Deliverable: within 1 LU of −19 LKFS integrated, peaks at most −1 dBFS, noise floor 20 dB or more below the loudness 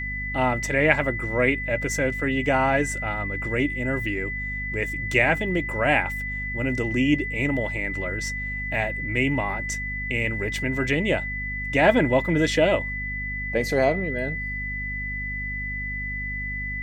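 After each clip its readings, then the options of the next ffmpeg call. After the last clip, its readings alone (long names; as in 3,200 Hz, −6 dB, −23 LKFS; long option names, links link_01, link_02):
mains hum 50 Hz; hum harmonics up to 250 Hz; level of the hum −31 dBFS; interfering tone 2,000 Hz; level of the tone −29 dBFS; integrated loudness −24.0 LKFS; sample peak −4.0 dBFS; target loudness −19.0 LKFS
→ -af "bandreject=frequency=50:width_type=h:width=4,bandreject=frequency=100:width_type=h:width=4,bandreject=frequency=150:width_type=h:width=4,bandreject=frequency=200:width_type=h:width=4,bandreject=frequency=250:width_type=h:width=4"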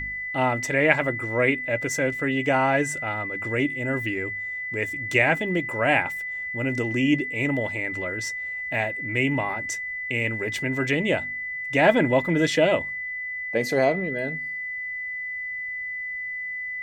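mains hum none found; interfering tone 2,000 Hz; level of the tone −29 dBFS
→ -af "bandreject=frequency=2000:width=30"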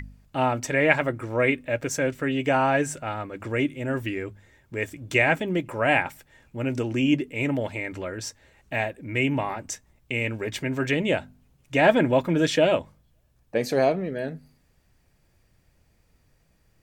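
interfering tone none found; integrated loudness −25.0 LKFS; sample peak −3.5 dBFS; target loudness −19.0 LKFS
→ -af "volume=6dB,alimiter=limit=-1dB:level=0:latency=1"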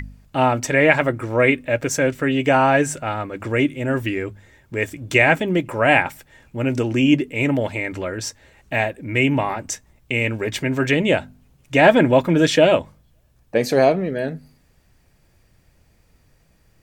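integrated loudness −19.0 LKFS; sample peak −1.0 dBFS; background noise floor −58 dBFS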